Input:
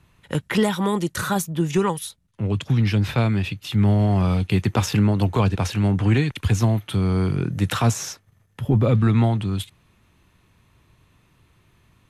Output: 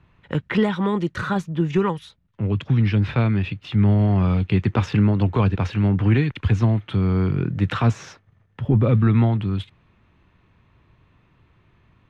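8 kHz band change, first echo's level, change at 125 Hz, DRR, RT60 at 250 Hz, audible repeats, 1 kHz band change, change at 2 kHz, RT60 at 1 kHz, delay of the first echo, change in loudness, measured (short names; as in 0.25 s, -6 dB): under -15 dB, none, +1.0 dB, none, none, none, -1.5 dB, -0.5 dB, none, none, +0.5 dB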